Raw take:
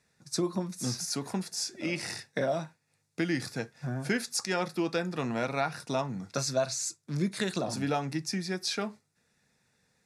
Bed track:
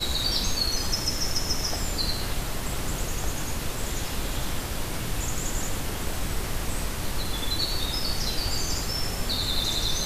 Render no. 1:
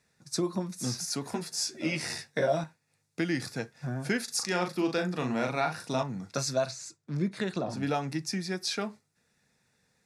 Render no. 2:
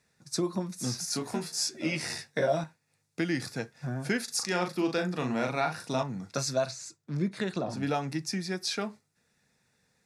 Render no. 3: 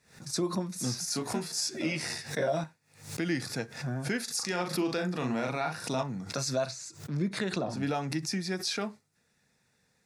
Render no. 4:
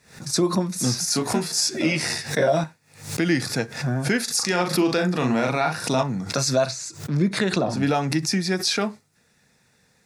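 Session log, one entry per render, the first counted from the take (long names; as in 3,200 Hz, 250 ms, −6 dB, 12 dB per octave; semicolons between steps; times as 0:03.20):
0:01.31–0:02.64: double-tracking delay 13 ms −2.5 dB; 0:04.24–0:06.03: double-tracking delay 39 ms −5.5 dB; 0:06.71–0:07.83: low-pass filter 2,200 Hz 6 dB per octave
0:01.08–0:01.69: double-tracking delay 26 ms −5 dB
brickwall limiter −20.5 dBFS, peak gain reduction 5 dB; background raised ahead of every attack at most 120 dB per second
level +9.5 dB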